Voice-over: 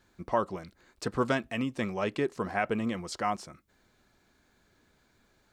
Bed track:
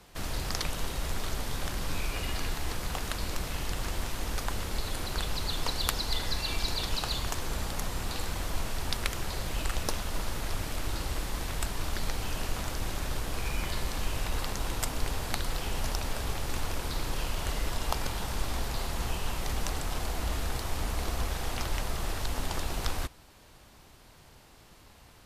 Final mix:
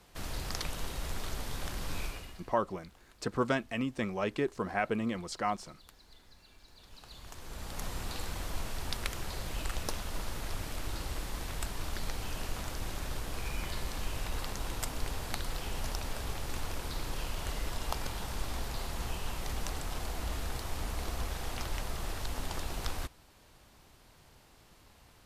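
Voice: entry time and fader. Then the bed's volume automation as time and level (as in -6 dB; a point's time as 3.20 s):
2.20 s, -2.0 dB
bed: 2.05 s -4.5 dB
2.58 s -28 dB
6.67 s -28 dB
7.85 s -4.5 dB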